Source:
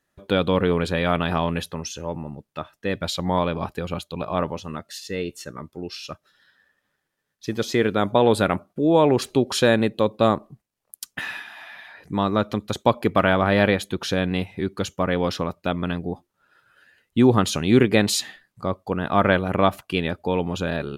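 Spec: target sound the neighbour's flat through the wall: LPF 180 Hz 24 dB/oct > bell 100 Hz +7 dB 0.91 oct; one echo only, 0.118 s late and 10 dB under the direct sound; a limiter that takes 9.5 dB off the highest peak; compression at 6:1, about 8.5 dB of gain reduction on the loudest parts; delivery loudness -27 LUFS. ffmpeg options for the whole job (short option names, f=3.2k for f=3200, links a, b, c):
-af "acompressor=threshold=-21dB:ratio=6,alimiter=limit=-18dB:level=0:latency=1,lowpass=f=180:w=0.5412,lowpass=f=180:w=1.3066,equalizer=f=100:t=o:w=0.91:g=7,aecho=1:1:118:0.316,volume=8dB"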